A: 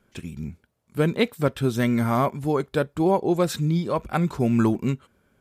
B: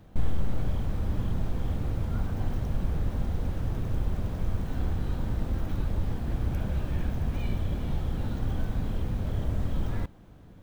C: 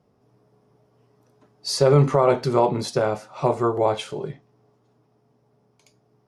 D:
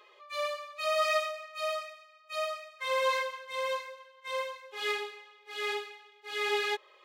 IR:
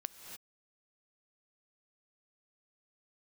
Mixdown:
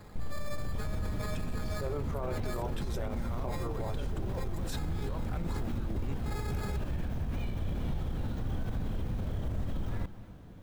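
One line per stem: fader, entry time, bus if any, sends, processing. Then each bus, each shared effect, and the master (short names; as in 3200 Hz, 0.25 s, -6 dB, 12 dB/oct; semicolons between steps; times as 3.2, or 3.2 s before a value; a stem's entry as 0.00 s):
-6.0 dB, 1.20 s, bus A, no send, bell 140 Hz -5 dB 0.67 oct
-1.5 dB, 0.00 s, no bus, send -8 dB, limiter -22.5 dBFS, peak gain reduction 8.5 dB
-14.0 dB, 0.00 s, no bus, no send, de-esser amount 85%; HPF 190 Hz
-7.0 dB, 0.00 s, bus A, no send, negative-ratio compressor -34 dBFS, ratio -0.5; sample-and-hold 15×
bus A: 0.0 dB, negative-ratio compressor -33 dBFS, ratio -0.5; limiter -29 dBFS, peak gain reduction 10.5 dB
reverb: on, pre-delay 3 ms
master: limiter -26 dBFS, peak gain reduction 9 dB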